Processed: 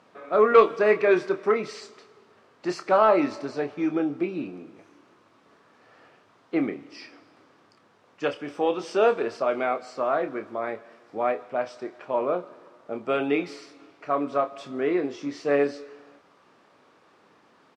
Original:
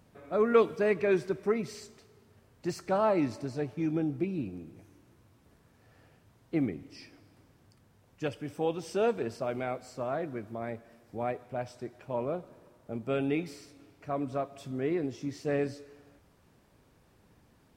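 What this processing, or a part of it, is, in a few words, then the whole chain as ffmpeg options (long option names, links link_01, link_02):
intercom: -filter_complex "[0:a]highpass=340,lowpass=4800,equalizer=frequency=1200:width_type=o:width=0.4:gain=6.5,asoftclip=type=tanh:threshold=-14dB,asplit=2[link_01][link_02];[link_02]adelay=28,volume=-9dB[link_03];[link_01][link_03]amix=inputs=2:normalize=0,volume=8dB"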